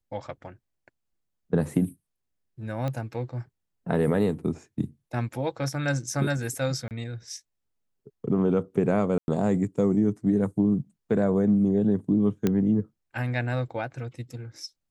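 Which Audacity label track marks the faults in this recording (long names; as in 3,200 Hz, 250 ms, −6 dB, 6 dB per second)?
2.880000	2.880000	click −19 dBFS
6.880000	6.910000	drop-out 28 ms
9.180000	9.280000	drop-out 101 ms
12.470000	12.470000	click −11 dBFS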